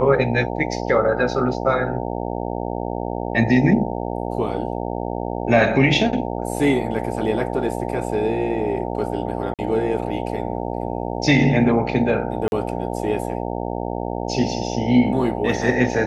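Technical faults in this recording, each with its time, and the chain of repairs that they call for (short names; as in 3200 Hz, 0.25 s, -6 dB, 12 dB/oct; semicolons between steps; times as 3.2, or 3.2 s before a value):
buzz 60 Hz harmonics 15 -26 dBFS
9.54–9.59 gap 47 ms
12.48–12.52 gap 41 ms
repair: de-hum 60 Hz, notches 15; interpolate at 9.54, 47 ms; interpolate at 12.48, 41 ms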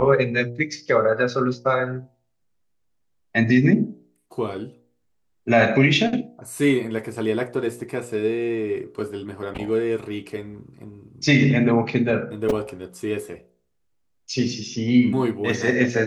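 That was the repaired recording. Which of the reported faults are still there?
none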